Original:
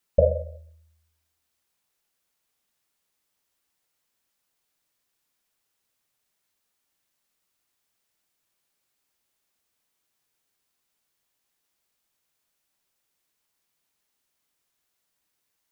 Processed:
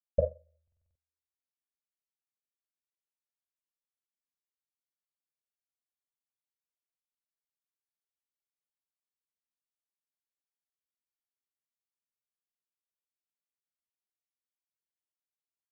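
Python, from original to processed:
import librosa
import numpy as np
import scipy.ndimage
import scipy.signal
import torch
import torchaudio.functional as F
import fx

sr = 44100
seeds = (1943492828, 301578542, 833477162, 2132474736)

y = fx.buffer_glitch(x, sr, at_s=(0.63,), block=2048, repeats=6)
y = fx.upward_expand(y, sr, threshold_db=-30.0, expansion=2.5)
y = F.gain(torch.from_numpy(y), -7.0).numpy()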